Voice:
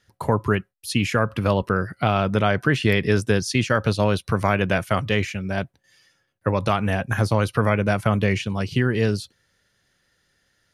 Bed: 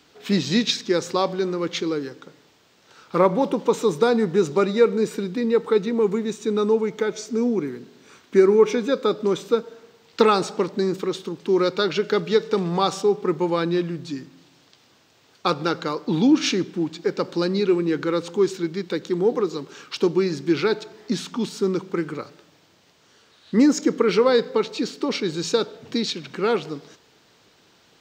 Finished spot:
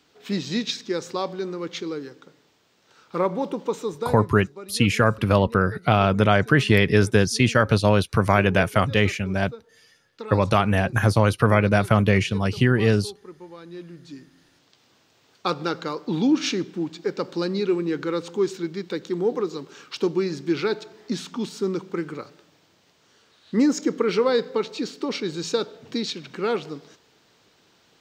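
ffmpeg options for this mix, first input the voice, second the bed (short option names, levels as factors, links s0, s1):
-filter_complex "[0:a]adelay=3850,volume=1.26[s0];[1:a]volume=3.76,afade=t=out:st=3.63:d=0.76:silence=0.188365,afade=t=in:st=13.64:d=1.33:silence=0.141254[s1];[s0][s1]amix=inputs=2:normalize=0"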